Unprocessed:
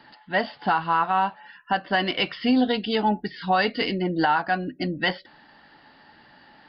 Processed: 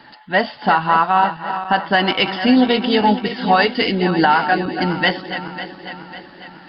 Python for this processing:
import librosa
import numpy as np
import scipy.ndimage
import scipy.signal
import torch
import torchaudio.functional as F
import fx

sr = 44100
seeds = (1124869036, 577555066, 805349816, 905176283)

y = fx.reverse_delay_fb(x, sr, ms=274, feedback_pct=70, wet_db=-10.5)
y = F.gain(torch.from_numpy(y), 7.0).numpy()